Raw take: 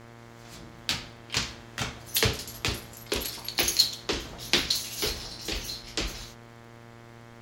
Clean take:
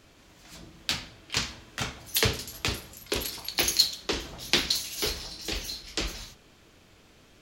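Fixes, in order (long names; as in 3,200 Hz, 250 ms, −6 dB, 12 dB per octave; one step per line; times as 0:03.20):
click removal
hum removal 117 Hz, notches 19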